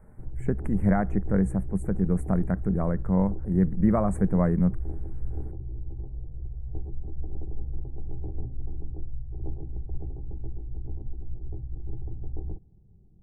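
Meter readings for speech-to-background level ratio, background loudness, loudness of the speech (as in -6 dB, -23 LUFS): 12.0 dB, -38.0 LUFS, -26.0 LUFS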